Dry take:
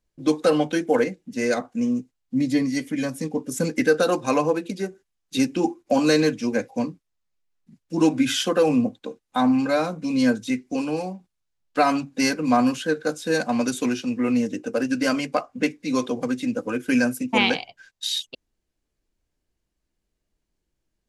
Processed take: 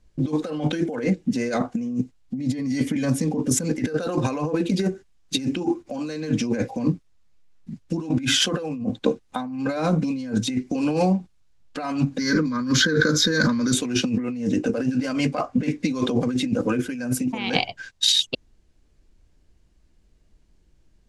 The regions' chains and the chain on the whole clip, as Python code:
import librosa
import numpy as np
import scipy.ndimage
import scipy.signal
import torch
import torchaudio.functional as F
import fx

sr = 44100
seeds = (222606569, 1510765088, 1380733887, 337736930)

y = fx.chain(x, sr, fx.low_shelf(hz=360.0, db=-4.0),
    fx.fixed_phaser(hz=2700.0, stages=6),
    fx.pre_swell(db_per_s=55.0), at=(12.18, 13.73))
y = scipy.signal.sosfilt(scipy.signal.butter(2, 8700.0, 'lowpass', fs=sr, output='sos'), y)
y = fx.low_shelf(y, sr, hz=200.0, db=9.5)
y = fx.over_compress(y, sr, threshold_db=-28.0, ratio=-1.0)
y = y * 10.0 ** (4.0 / 20.0)